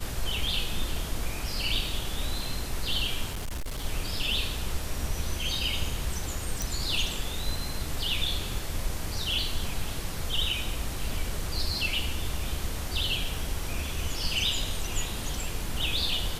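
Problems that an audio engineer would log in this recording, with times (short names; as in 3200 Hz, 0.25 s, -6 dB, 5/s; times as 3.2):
3.3–3.85 clipped -29.5 dBFS
6.62 pop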